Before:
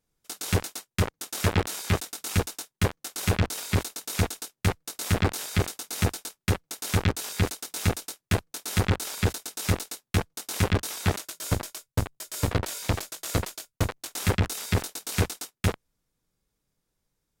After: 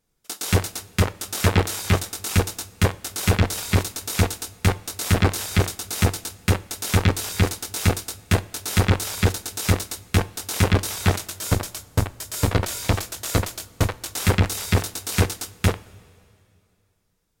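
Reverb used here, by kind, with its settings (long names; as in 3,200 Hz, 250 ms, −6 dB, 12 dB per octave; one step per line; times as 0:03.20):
coupled-rooms reverb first 0.35 s, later 2.5 s, from −15 dB, DRR 13.5 dB
level +5 dB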